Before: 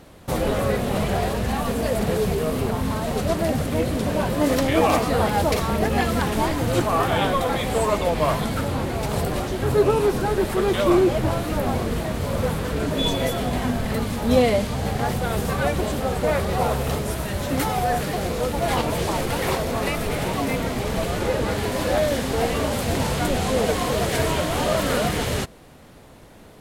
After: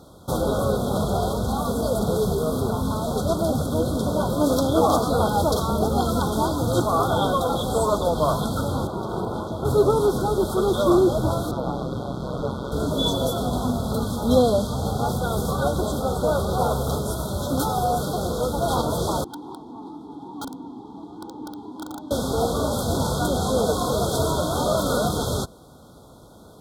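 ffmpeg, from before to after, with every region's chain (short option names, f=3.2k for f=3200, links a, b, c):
-filter_complex "[0:a]asettb=1/sr,asplit=3[a][b][c];[a]atrim=end=8.874[d];[b]atrim=start=8.87:end=9.65,asetpts=PTS-STARTPTS,afade=t=in:d=0.004:c=qsin,afade=t=out:st=0.776:d=0.004:c=qsin,acrossover=split=3500[e][f];[f]acompressor=threshold=-50dB:ratio=4:attack=1:release=60[g];[e][g]amix=inputs=2:normalize=0,aeval=exprs='val(0)*sin(2*PI*270*n/s)':c=same[h];[c]atrim=start=9.646[i];[d][h]acrossfade=d=0.004:c1=hsin:c2=qsin[j];[j][i]acrossfade=d=0.004:c1=qsin:c2=hsin,asettb=1/sr,asplit=3[k][l][m];[k]atrim=end=11.514[n];[l]atrim=start=11.51:end=12.72,asetpts=PTS-STARTPTS,afade=t=in:d=0.004:c=qsin,afade=t=out:st=1.206:d=0.004:c=qsin,acrossover=split=5400[o][p];[p]acompressor=threshold=-55dB:ratio=4:attack=1:release=60[q];[o][q]amix=inputs=2:normalize=0,aeval=exprs='val(0)*sin(2*PI*65*n/s)':c=same,highshelf=f=8.1k:g=-5[r];[m]atrim=start=12.716[s];[n][r]acrossfade=d=0.004:c1=hsin:c2=qsin[t];[t][s]acrossfade=d=0.004:c1=qsin:c2=hsin,asettb=1/sr,asplit=3[u][v][w];[u]atrim=end=19.244[x];[v]atrim=start=19.24:end=22.11,asetpts=PTS-STARTPTS,afade=t=in:d=0.004:c=qsin,afade=t=out:st=2.866:d=0.004:c=qsin,asplit=3[y][z][aa];[y]bandpass=f=300:t=q:w=8,volume=0dB[ab];[z]bandpass=f=870:t=q:w=8,volume=-6dB[ac];[aa]bandpass=f=2.24k:t=q:w=8,volume=-9dB[ad];[ab][ac][ad]amix=inputs=3:normalize=0,aeval=exprs='(mod(21.1*val(0)+1,2)-1)/21.1':c=same[ae];[w]atrim=start=22.106[af];[x][ae]acrossfade=d=0.004:c1=hsin:c2=qsin[ag];[ag][af]acrossfade=d=0.004:c1=qsin:c2=hsin,afftfilt=real='re*(1-between(b*sr/4096,1500,3200))':imag='im*(1-between(b*sr/4096,1500,3200))':win_size=4096:overlap=0.75,highpass=47"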